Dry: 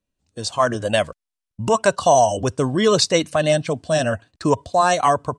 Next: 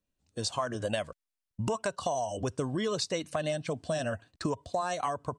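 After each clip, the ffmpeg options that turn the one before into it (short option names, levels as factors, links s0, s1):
-af "acompressor=threshold=0.0631:ratio=10,volume=0.631"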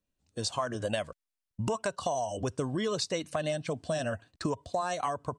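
-af anull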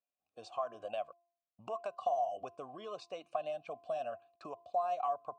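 -filter_complex "[0:a]asplit=3[s0][s1][s2];[s0]bandpass=f=730:t=q:w=8,volume=1[s3];[s1]bandpass=f=1090:t=q:w=8,volume=0.501[s4];[s2]bandpass=f=2440:t=q:w=8,volume=0.355[s5];[s3][s4][s5]amix=inputs=3:normalize=0,bandreject=f=344.3:t=h:w=4,bandreject=f=688.6:t=h:w=4,bandreject=f=1032.9:t=h:w=4,volume=1.26"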